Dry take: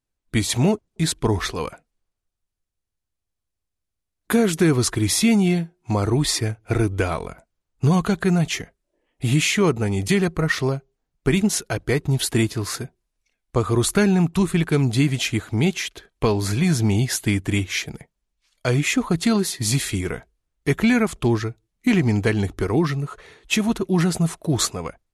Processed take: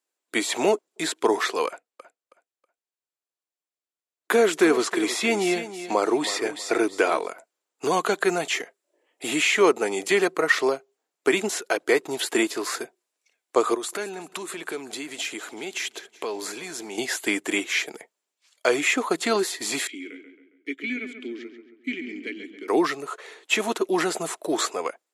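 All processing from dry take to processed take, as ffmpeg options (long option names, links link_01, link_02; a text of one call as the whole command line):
ffmpeg -i in.wav -filter_complex "[0:a]asettb=1/sr,asplit=3[link_01][link_02][link_03];[link_01]atrim=end=1.674[link_04];[link_02]atrim=start=1.67:end=7.29,asetpts=PTS-STARTPTS,afade=type=in:duration=0.004:curve=qsin,afade=type=out:start_time=5.616:duration=0.004:curve=qsin,highshelf=frequency=8000:gain=-7,agate=range=-9dB:threshold=-48dB:ratio=16:release=100:detection=peak,aecho=1:1:321|642|963:0.224|0.0582|0.0151,atrim=end_sample=247842[link_05];[link_03]atrim=start=7.286[link_06];[link_04][link_05]acrossfade=duration=0.004:curve1=hsin:curve2=qsin[link_07];[link_07][link_06]acrossfade=duration=0.004:curve1=qsin:curve2=hsin,asettb=1/sr,asplit=3[link_08][link_09][link_10];[link_08]atrim=end=13.744[link_11];[link_09]atrim=start=13.74:end=16.98,asetpts=PTS-STARTPTS,afade=type=in:duration=0.004:curve=qsin,afade=type=out:start_time=3.236:duration=0.004:curve=qsin,acompressor=threshold=-27dB:ratio=6:attack=3.2:release=140:knee=1:detection=peak,aecho=1:1:185|370|555|740:0.0891|0.0472|0.025|0.0133,atrim=end_sample=142884[link_12];[link_10]atrim=start=16.976[link_13];[link_11][link_12]acrossfade=duration=0.004:curve1=hsin:curve2=qsin[link_14];[link_14][link_13]acrossfade=duration=0.004:curve1=qsin:curve2=hsin,asettb=1/sr,asplit=3[link_15][link_16][link_17];[link_15]atrim=end=19.874[link_18];[link_16]atrim=start=19.87:end=22.68,asetpts=PTS-STARTPTS,afade=type=in:duration=0.004:curve=qsin,afade=type=out:start_time=2.806:duration=0.004:curve=qsin,asplit=3[link_19][link_20][link_21];[link_19]bandpass=frequency=270:width_type=q:width=8,volume=0dB[link_22];[link_20]bandpass=frequency=2290:width_type=q:width=8,volume=-6dB[link_23];[link_21]bandpass=frequency=3010:width_type=q:width=8,volume=-9dB[link_24];[link_22][link_23][link_24]amix=inputs=3:normalize=0,asplit=2[link_25][link_26];[link_26]adelay=136,lowpass=frequency=2900:poles=1,volume=-8dB,asplit=2[link_27][link_28];[link_28]adelay=136,lowpass=frequency=2900:poles=1,volume=0.49,asplit=2[link_29][link_30];[link_30]adelay=136,lowpass=frequency=2900:poles=1,volume=0.49,asplit=2[link_31][link_32];[link_32]adelay=136,lowpass=frequency=2900:poles=1,volume=0.49,asplit=2[link_33][link_34];[link_34]adelay=136,lowpass=frequency=2900:poles=1,volume=0.49,asplit=2[link_35][link_36];[link_36]adelay=136,lowpass=frequency=2900:poles=1,volume=0.49[link_37];[link_25][link_27][link_29][link_31][link_33][link_35][link_37]amix=inputs=7:normalize=0,atrim=end_sample=123921[link_38];[link_17]atrim=start=22.676[link_39];[link_18][link_38]acrossfade=duration=0.004:curve1=hsin:curve2=qsin[link_40];[link_40][link_39]acrossfade=duration=0.004:curve1=qsin:curve2=hsin,highpass=frequency=350:width=0.5412,highpass=frequency=350:width=1.3066,acrossover=split=3000[link_41][link_42];[link_42]acompressor=threshold=-34dB:ratio=4:attack=1:release=60[link_43];[link_41][link_43]amix=inputs=2:normalize=0,equalizer=frequency=7400:width=7.7:gain=7.5,volume=3.5dB" out.wav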